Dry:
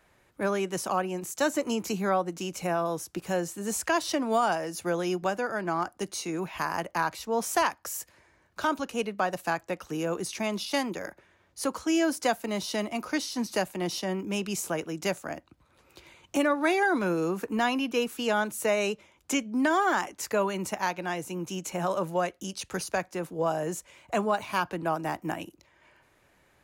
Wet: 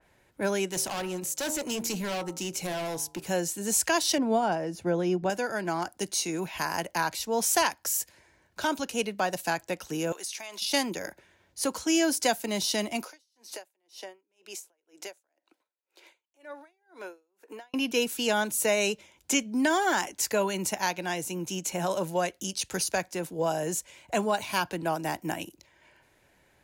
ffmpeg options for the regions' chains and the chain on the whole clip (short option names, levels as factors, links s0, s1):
-filter_complex "[0:a]asettb=1/sr,asplit=3[s0][s1][s2];[s0]atrim=end=0.694[s3];[s1]atrim=start=0.69:end=3.24,asetpts=PTS-STARTPTS,afade=t=in:d=0.004:c=qsin,afade=t=out:st=2.546:d=0.004:c=qsin,bandreject=f=76.85:t=h:w=4,bandreject=f=153.7:t=h:w=4,bandreject=f=230.55:t=h:w=4,bandreject=f=307.4:t=h:w=4,bandreject=f=384.25:t=h:w=4,bandreject=f=461.1:t=h:w=4,bandreject=f=537.95:t=h:w=4,bandreject=f=614.8:t=h:w=4,bandreject=f=691.65:t=h:w=4,bandreject=f=768.5:t=h:w=4,bandreject=f=845.35:t=h:w=4,bandreject=f=922.2:t=h:w=4,bandreject=f=999.05:t=h:w=4,bandreject=f=1075.9:t=h:w=4,bandreject=f=1152.75:t=h:w=4,bandreject=f=1229.6:t=h:w=4,bandreject=f=1306.45:t=h:w=4,bandreject=f=1383.3:t=h:w=4,volume=29.9,asoftclip=hard,volume=0.0335[s4];[s2]atrim=start=3.236[s5];[s3][s4]acrossfade=d=0.004:c1=hsin:c2=qsin[s6];[s6][s5]acrossfade=d=0.004:c1=qsin:c2=hsin,asettb=1/sr,asplit=3[s7][s8][s9];[s7]atrim=end=4.184[s10];[s8]atrim=start=4.18:end=5.3,asetpts=PTS-STARTPTS,afade=t=in:d=0.004:c=qsin,afade=t=out:st=1.116:d=0.004:c=qsin,lowpass=f=1200:p=1,lowshelf=f=350:g=5.5[s11];[s9]atrim=start=5.296[s12];[s10][s11]acrossfade=d=0.004:c1=hsin:c2=qsin[s13];[s13][s12]acrossfade=d=0.004:c1=qsin:c2=hsin,asettb=1/sr,asplit=3[s14][s15][s16];[s14]atrim=end=10.124[s17];[s15]atrim=start=10.12:end=10.62,asetpts=PTS-STARTPTS,afade=t=in:d=0.004:c=qsin,afade=t=out:st=0.496:d=0.004:c=qsin,highpass=770,acompressor=threshold=0.0141:ratio=10:attack=3.2:release=140:knee=1:detection=peak[s18];[s16]atrim=start=10.616[s19];[s17][s18]acrossfade=d=0.004:c1=hsin:c2=qsin[s20];[s20][s19]acrossfade=d=0.004:c1=qsin:c2=hsin,asettb=1/sr,asplit=3[s21][s22][s23];[s21]atrim=end=13.044[s24];[s22]atrim=start=13.04:end=17.74,asetpts=PTS-STARTPTS,afade=t=in:d=0.004:c=qsin,afade=t=out:st=4.696:d=0.004:c=qsin,highpass=f=370:w=0.5412,highpass=f=370:w=1.3066,acompressor=threshold=0.0126:ratio=3:attack=3.2:release=140:knee=1:detection=peak,aeval=exprs='val(0)*pow(10,-40*(0.5-0.5*cos(2*PI*2*n/s))/20)':c=same[s25];[s23]atrim=start=17.736[s26];[s24][s25]acrossfade=d=0.004:c1=hsin:c2=qsin[s27];[s27][s26]acrossfade=d=0.004:c1=qsin:c2=hsin,bandreject=f=1200:w=5.6,adynamicequalizer=threshold=0.00501:dfrequency=2800:dqfactor=0.7:tfrequency=2800:tqfactor=0.7:attack=5:release=100:ratio=0.375:range=4:mode=boostabove:tftype=highshelf"